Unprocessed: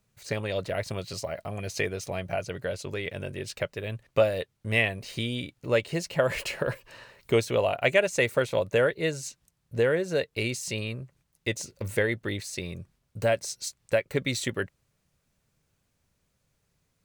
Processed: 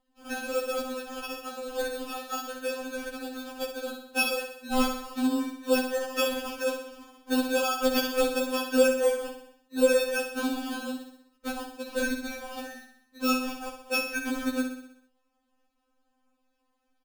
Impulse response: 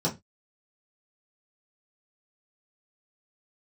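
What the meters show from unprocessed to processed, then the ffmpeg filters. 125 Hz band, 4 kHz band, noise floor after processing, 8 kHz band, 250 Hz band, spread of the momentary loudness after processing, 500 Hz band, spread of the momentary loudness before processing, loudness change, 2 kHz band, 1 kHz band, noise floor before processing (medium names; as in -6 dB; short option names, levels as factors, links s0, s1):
under -25 dB, +0.5 dB, -75 dBFS, 0.0 dB, +5.0 dB, 13 LU, -1.5 dB, 12 LU, -0.5 dB, -2.0 dB, +3.5 dB, -75 dBFS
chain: -filter_complex "[0:a]afftfilt=real='real(if(between(b,1,1012),(2*floor((b-1)/92)+1)*92-b,b),0)':imag='imag(if(between(b,1,1012),(2*floor((b-1)/92)+1)*92-b,b),0)*if(between(b,1,1012),-1,1)':win_size=2048:overlap=0.75,lowshelf=f=73:g=5.5,acrusher=samples=22:mix=1:aa=0.000001,asplit=2[s0][s1];[s1]aecho=0:1:63|126|189|252|315|378|441:0.422|0.236|0.132|0.0741|0.0415|0.0232|0.013[s2];[s0][s2]amix=inputs=2:normalize=0,afftfilt=real='re*3.46*eq(mod(b,12),0)':imag='im*3.46*eq(mod(b,12),0)':win_size=2048:overlap=0.75,volume=1.19"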